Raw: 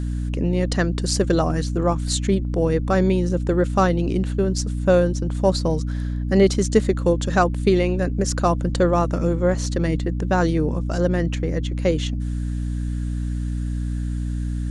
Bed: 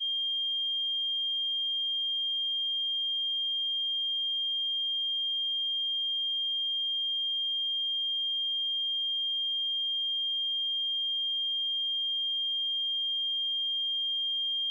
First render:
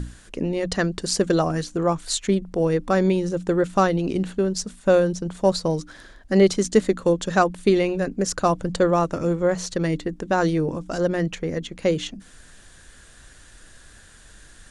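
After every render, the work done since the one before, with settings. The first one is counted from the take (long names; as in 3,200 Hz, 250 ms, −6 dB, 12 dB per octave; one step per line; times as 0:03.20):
mains-hum notches 60/120/180/240/300 Hz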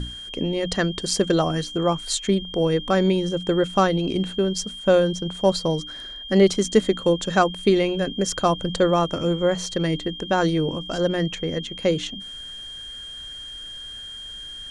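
mix in bed −6.5 dB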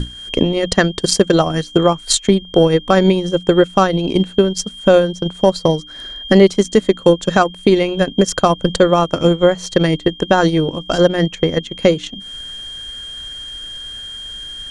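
transient designer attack +9 dB, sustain −8 dB
boost into a limiter +6.5 dB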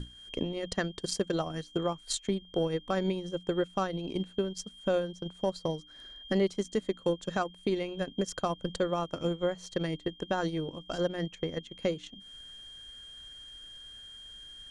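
level −18 dB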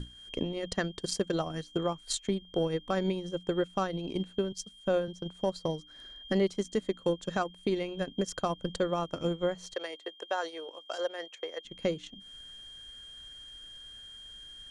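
0:04.52–0:05.08: multiband upward and downward expander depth 40%
0:09.74–0:11.65: high-pass filter 470 Hz 24 dB per octave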